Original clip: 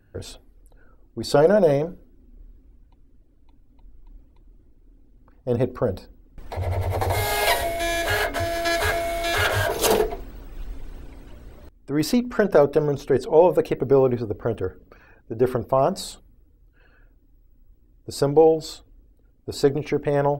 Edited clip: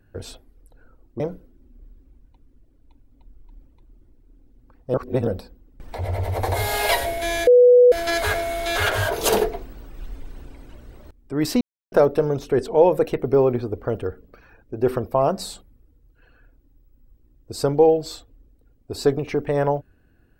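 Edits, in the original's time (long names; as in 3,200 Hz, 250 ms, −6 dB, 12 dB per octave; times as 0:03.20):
0:01.20–0:01.78: remove
0:05.52–0:05.85: reverse
0:08.05–0:08.50: beep over 492 Hz −8 dBFS
0:12.19–0:12.50: silence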